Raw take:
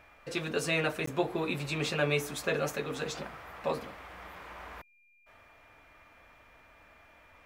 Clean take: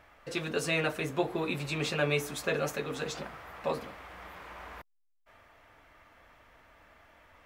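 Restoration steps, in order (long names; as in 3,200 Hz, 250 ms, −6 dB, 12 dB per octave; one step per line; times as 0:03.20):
notch filter 2,400 Hz, Q 30
repair the gap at 0:01.06, 14 ms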